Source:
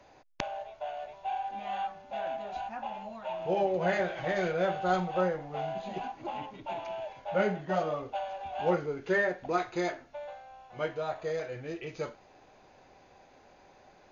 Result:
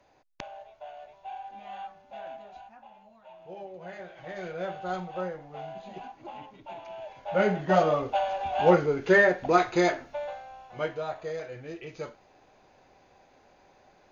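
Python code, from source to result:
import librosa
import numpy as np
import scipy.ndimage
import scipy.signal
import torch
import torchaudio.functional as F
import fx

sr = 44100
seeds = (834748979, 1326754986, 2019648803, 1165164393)

y = fx.gain(x, sr, db=fx.line((2.32, -6.0), (2.84, -14.0), (3.92, -14.0), (4.62, -5.0), (6.85, -5.0), (7.71, 8.0), (10.07, 8.0), (11.32, -1.5)))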